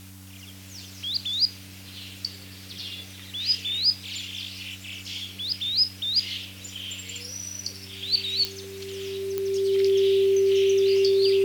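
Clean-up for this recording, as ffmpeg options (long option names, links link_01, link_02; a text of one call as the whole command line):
ffmpeg -i in.wav -af "adeclick=threshold=4,bandreject=frequency=95.3:width_type=h:width=4,bandreject=frequency=190.6:width_type=h:width=4,bandreject=frequency=285.9:width_type=h:width=4,bandreject=frequency=390:width=30,afwtdn=0.0032" out.wav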